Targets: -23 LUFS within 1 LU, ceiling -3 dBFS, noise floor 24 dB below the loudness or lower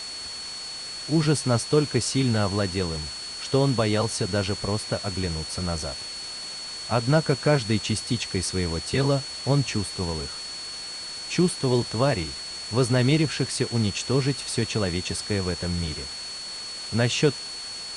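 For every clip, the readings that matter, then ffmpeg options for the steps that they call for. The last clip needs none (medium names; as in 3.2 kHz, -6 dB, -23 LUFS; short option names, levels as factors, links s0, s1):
steady tone 4.4 kHz; tone level -34 dBFS; noise floor -36 dBFS; noise floor target -50 dBFS; loudness -25.5 LUFS; peak level -9.0 dBFS; loudness target -23.0 LUFS
-> -af "bandreject=f=4400:w=30"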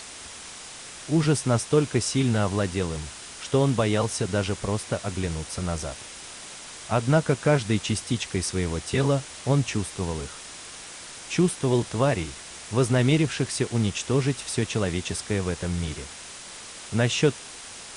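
steady tone not found; noise floor -41 dBFS; noise floor target -50 dBFS
-> -af "afftdn=nr=9:nf=-41"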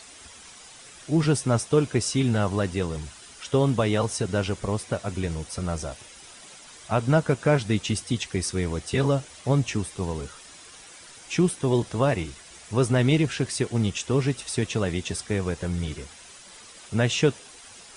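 noise floor -47 dBFS; noise floor target -50 dBFS
-> -af "afftdn=nr=6:nf=-47"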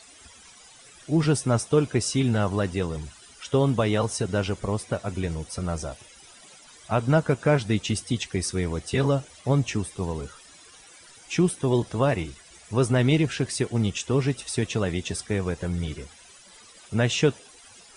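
noise floor -51 dBFS; loudness -25.5 LUFS; peak level -9.0 dBFS; loudness target -23.0 LUFS
-> -af "volume=1.33"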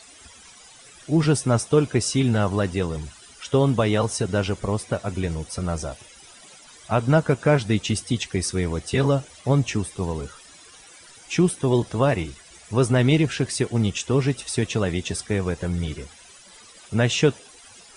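loudness -23.0 LUFS; peak level -6.5 dBFS; noise floor -48 dBFS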